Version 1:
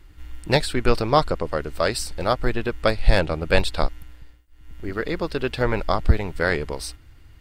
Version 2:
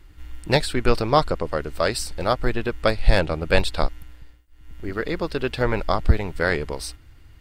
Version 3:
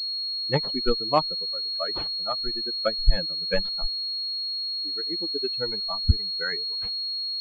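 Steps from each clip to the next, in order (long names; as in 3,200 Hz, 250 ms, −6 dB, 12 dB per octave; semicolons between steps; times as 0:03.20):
no processing that can be heard
spectral dynamics exaggerated over time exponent 3; switching amplifier with a slow clock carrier 4,300 Hz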